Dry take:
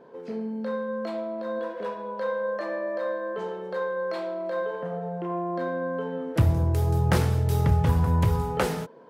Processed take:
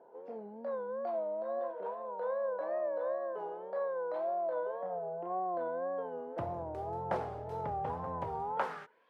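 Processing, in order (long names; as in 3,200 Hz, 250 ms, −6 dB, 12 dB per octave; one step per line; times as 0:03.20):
tape wow and flutter 110 cents
band-pass filter sweep 720 Hz → 2,900 Hz, 0:08.47–0:09.08
level −1 dB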